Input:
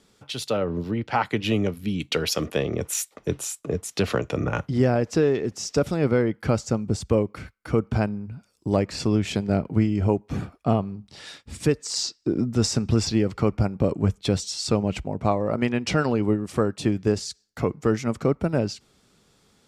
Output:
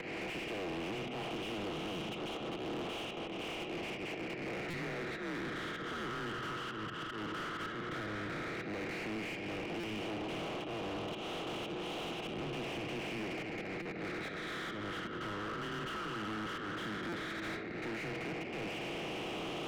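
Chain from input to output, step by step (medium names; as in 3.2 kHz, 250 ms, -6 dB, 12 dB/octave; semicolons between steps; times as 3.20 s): spectral levelling over time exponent 0.2; mistuned SSB -98 Hz 210–3200 Hz; inverted gate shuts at -14 dBFS, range -36 dB; slow attack 241 ms; compression 8:1, threshold -52 dBFS, peak gain reduction 19.5 dB; bass shelf 470 Hz +7 dB; on a send at -11 dB: reverberation RT60 0.75 s, pre-delay 6 ms; on the sum: phase shifter stages 12, 0.11 Hz, lowest notch 740–1700 Hz; tilt shelf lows -7 dB, about 940 Hz; overdrive pedal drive 38 dB, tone 1.8 kHz, clips at -36.5 dBFS; buffer glitch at 4.70/9.80/13.82/17.09 s, samples 256, times 5; trim +5.5 dB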